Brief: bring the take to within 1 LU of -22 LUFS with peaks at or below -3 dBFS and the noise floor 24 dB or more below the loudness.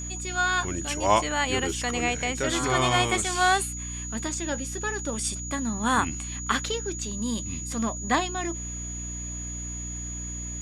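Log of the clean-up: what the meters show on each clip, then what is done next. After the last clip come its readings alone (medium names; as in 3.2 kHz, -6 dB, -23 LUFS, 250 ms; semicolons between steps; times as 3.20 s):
hum 60 Hz; highest harmonic 300 Hz; hum level -34 dBFS; steady tone 6.8 kHz; tone level -35 dBFS; loudness -27.0 LUFS; peak level -7.5 dBFS; loudness target -22.0 LUFS
-> hum notches 60/120/180/240/300 Hz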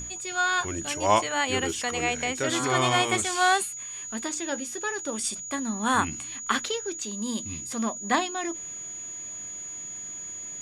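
hum not found; steady tone 6.8 kHz; tone level -35 dBFS
-> band-stop 6.8 kHz, Q 30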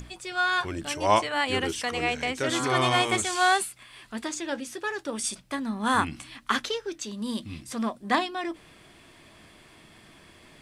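steady tone not found; loudness -27.5 LUFS; peak level -7.5 dBFS; loudness target -22.0 LUFS
-> trim +5.5 dB; peak limiter -3 dBFS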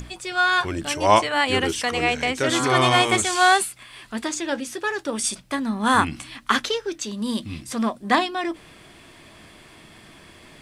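loudness -22.0 LUFS; peak level -3.0 dBFS; noise floor -49 dBFS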